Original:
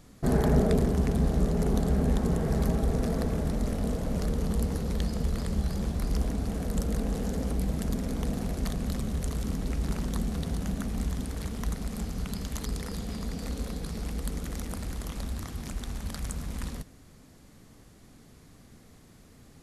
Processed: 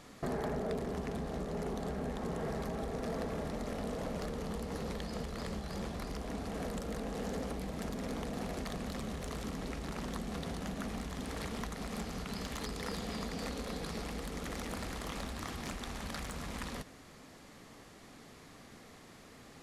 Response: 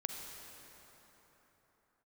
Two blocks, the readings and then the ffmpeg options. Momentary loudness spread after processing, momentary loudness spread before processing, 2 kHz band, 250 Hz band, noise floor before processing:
16 LU, 10 LU, -0.5 dB, -9.0 dB, -54 dBFS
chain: -filter_complex "[0:a]acompressor=threshold=0.0251:ratio=6,bandreject=f=1500:w=24,asplit=2[s0][s1];[s1]highpass=f=720:p=1,volume=7.08,asoftclip=type=tanh:threshold=0.106[s2];[s0][s2]amix=inputs=2:normalize=0,lowpass=f=3000:p=1,volume=0.501,volume=0.668"

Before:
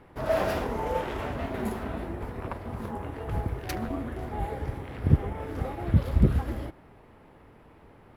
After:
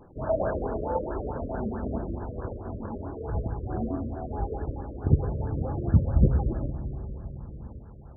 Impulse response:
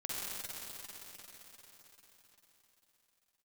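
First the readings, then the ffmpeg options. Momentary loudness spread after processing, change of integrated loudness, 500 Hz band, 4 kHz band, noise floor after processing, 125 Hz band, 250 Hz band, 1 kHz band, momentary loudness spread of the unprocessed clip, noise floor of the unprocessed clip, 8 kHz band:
14 LU, +0.5 dB, +0.5 dB, under -35 dB, -45 dBFS, +1.5 dB, +0.5 dB, -2.0 dB, 11 LU, -54 dBFS, under -30 dB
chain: -filter_complex "[0:a]lowshelf=f=120:g=-4,asplit=2[s0][s1];[1:a]atrim=start_sample=2205,lowpass=f=1200:w=0.5412,lowpass=f=1200:w=1.3066,lowshelf=f=130:g=10[s2];[s1][s2]afir=irnorm=-1:irlink=0,volume=0.251[s3];[s0][s3]amix=inputs=2:normalize=0,aphaser=in_gain=1:out_gain=1:delay=3.6:decay=0.27:speed=0.52:type=triangular,afftfilt=real='re*lt(b*sr/1024,600*pow(1800/600,0.5+0.5*sin(2*PI*4.6*pts/sr)))':imag='im*lt(b*sr/1024,600*pow(1800/600,0.5+0.5*sin(2*PI*4.6*pts/sr)))':win_size=1024:overlap=0.75"

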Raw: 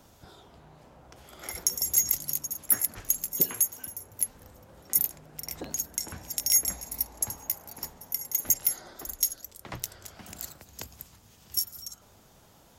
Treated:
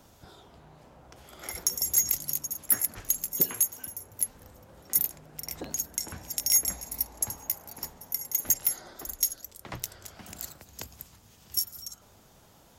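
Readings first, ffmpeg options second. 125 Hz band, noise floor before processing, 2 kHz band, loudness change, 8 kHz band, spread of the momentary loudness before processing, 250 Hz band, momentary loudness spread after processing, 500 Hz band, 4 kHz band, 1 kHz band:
0.0 dB, -58 dBFS, 0.0 dB, -0.5 dB, 0.0 dB, 18 LU, 0.0 dB, 18 LU, 0.0 dB, 0.0 dB, 0.0 dB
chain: -af "asoftclip=type=hard:threshold=0.224"

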